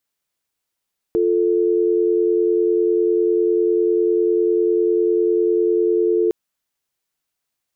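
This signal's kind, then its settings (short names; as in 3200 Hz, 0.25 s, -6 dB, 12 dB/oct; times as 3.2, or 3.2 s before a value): call progress tone dial tone, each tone -17 dBFS 5.16 s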